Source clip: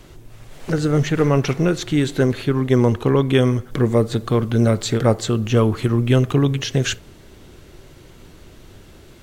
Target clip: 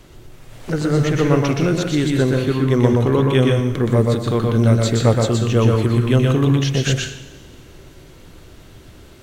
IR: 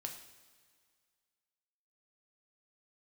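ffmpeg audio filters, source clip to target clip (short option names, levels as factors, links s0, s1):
-filter_complex "[0:a]asplit=2[s0][s1];[1:a]atrim=start_sample=2205,adelay=122[s2];[s1][s2]afir=irnorm=-1:irlink=0,volume=1.12[s3];[s0][s3]amix=inputs=2:normalize=0,volume=0.891"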